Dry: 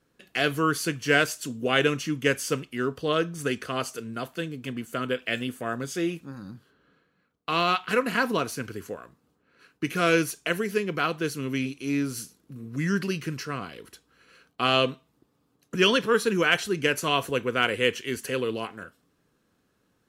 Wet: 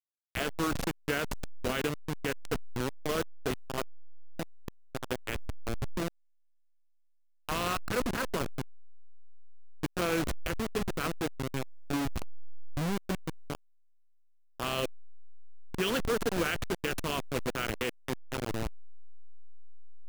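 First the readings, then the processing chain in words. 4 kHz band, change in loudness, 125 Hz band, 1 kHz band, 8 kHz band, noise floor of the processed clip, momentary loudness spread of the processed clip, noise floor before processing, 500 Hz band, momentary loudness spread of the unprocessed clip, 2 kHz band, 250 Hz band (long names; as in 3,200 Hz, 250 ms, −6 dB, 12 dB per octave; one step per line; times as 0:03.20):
−9.5 dB, −8.0 dB, −4.5 dB, −8.0 dB, −6.0 dB, −65 dBFS, 12 LU, −71 dBFS, −8.0 dB, 14 LU, −10.0 dB, −7.0 dB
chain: hold until the input has moved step −20 dBFS
brickwall limiter −15.5 dBFS, peak gain reduction 8.5 dB
level −4.5 dB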